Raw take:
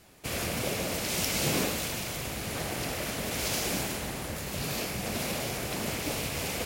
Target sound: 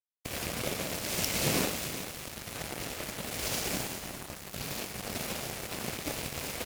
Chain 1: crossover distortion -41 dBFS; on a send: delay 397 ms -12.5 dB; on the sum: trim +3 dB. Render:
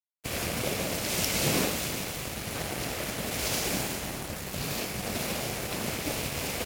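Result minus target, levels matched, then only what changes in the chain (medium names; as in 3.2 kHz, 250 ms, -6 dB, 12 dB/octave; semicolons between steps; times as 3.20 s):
crossover distortion: distortion -8 dB
change: crossover distortion -33.5 dBFS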